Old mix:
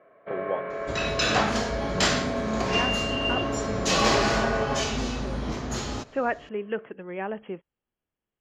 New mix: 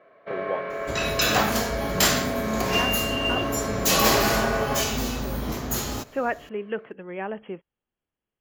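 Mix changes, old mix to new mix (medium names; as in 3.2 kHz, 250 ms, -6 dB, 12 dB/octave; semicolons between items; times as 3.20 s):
first sound: remove distance through air 340 m; second sound: remove Chebyshev low-pass 6.8 kHz, order 2; master: remove distance through air 65 m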